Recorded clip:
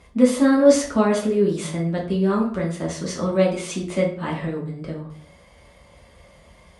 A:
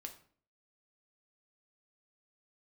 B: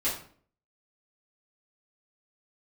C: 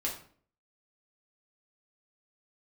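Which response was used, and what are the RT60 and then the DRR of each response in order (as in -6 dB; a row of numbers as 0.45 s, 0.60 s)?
C; 0.50 s, 0.50 s, 0.50 s; 4.0 dB, -11.0 dB, -3.5 dB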